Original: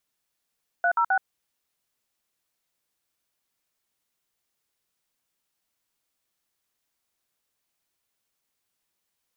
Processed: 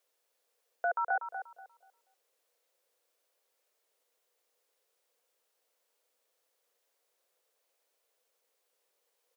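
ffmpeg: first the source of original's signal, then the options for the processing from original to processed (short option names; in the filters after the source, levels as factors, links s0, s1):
-f lavfi -i "aevalsrc='0.0841*clip(min(mod(t,0.131),0.076-mod(t,0.131))/0.002,0,1)*(eq(floor(t/0.131),0)*(sin(2*PI*697*mod(t,0.131))+sin(2*PI*1477*mod(t,0.131)))+eq(floor(t/0.131),1)*(sin(2*PI*941*mod(t,0.131))+sin(2*PI*1336*mod(t,0.131)))+eq(floor(t/0.131),2)*(sin(2*PI*770*mod(t,0.131))+sin(2*PI*1477*mod(t,0.131))))':d=0.393:s=44100"
-filter_complex "[0:a]alimiter=level_in=1.33:limit=0.0631:level=0:latency=1:release=123,volume=0.75,highpass=f=490:t=q:w=5.1,asplit=2[s0][s1];[s1]adelay=241,lowpass=f=1400:p=1,volume=0.447,asplit=2[s2][s3];[s3]adelay=241,lowpass=f=1400:p=1,volume=0.29,asplit=2[s4][s5];[s5]adelay=241,lowpass=f=1400:p=1,volume=0.29,asplit=2[s6][s7];[s7]adelay=241,lowpass=f=1400:p=1,volume=0.29[s8];[s0][s2][s4][s6][s8]amix=inputs=5:normalize=0"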